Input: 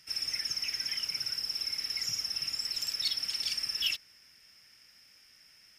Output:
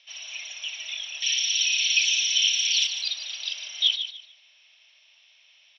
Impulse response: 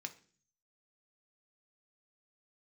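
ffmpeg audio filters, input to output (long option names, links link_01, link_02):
-filter_complex "[0:a]highpass=frequency=210:width_type=q:width=0.5412,highpass=frequency=210:width_type=q:width=1.307,lowpass=frequency=3500:width_type=q:width=0.5176,lowpass=frequency=3500:width_type=q:width=0.7071,lowpass=frequency=3500:width_type=q:width=1.932,afreqshift=370,aexciter=amount=5.3:drive=2.1:freq=2600,asettb=1/sr,asplit=3[link_01][link_02][link_03];[link_01]atrim=end=1.224[link_04];[link_02]atrim=start=1.22:end=2.87,asetpts=PTS-STARTPTS,afade=type=in:duration=0.004:curve=qsin,afade=type=out:start_time=1.646:duration=0.004:curve=qsin,highshelf=frequency=1900:width_type=q:width=1.5:gain=14[link_05];[link_03]atrim=start=2.866[link_06];[link_04][link_05]acrossfade=duration=0.004:curve1=hsin:curve2=qsin[link_07];[link_07][link_06]acrossfade=duration=0.004:curve1=qsin:curve2=hsin,asplit=2[link_08][link_09];[link_09]aecho=0:1:148|296|444:0.335|0.0837|0.0209[link_10];[link_08][link_10]amix=inputs=2:normalize=0"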